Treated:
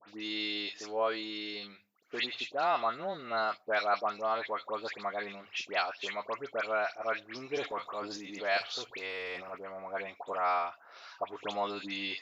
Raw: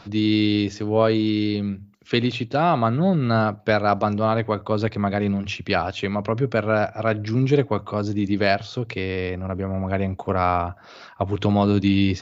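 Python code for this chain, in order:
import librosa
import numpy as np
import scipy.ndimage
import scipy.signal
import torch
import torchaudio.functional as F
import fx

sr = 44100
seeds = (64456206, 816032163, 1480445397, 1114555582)

y = scipy.signal.sosfilt(scipy.signal.butter(2, 720.0, 'highpass', fs=sr, output='sos'), x)
y = fx.transient(y, sr, attack_db=-2, sustain_db=8, at=(7.55, 9.55))
y = fx.dispersion(y, sr, late='highs', ms=92.0, hz=2000.0)
y = y * 10.0 ** (-6.5 / 20.0)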